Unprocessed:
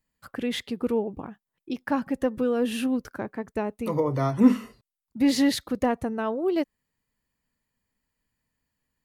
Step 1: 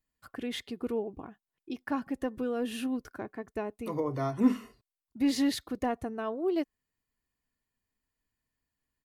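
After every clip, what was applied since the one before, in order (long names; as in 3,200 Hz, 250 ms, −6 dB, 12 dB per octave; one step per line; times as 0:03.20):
comb filter 2.8 ms, depth 33%
level −6.5 dB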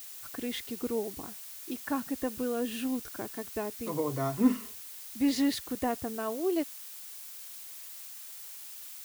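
background noise blue −45 dBFS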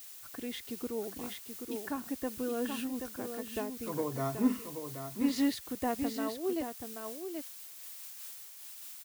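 single-tap delay 780 ms −6.5 dB
amplitude modulation by smooth noise, depth 55%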